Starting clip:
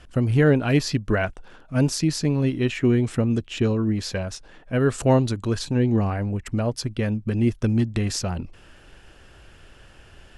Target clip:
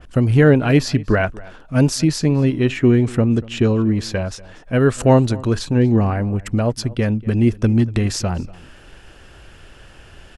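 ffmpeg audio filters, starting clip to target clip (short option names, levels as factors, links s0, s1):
-filter_complex "[0:a]asplit=2[s0][s1];[s1]adelay=239.1,volume=0.0891,highshelf=f=4000:g=-5.38[s2];[s0][s2]amix=inputs=2:normalize=0,adynamicequalizer=threshold=0.00708:dfrequency=2400:dqfactor=0.7:tfrequency=2400:tqfactor=0.7:attack=5:release=100:ratio=0.375:range=2:mode=cutabove:tftype=highshelf,volume=1.88"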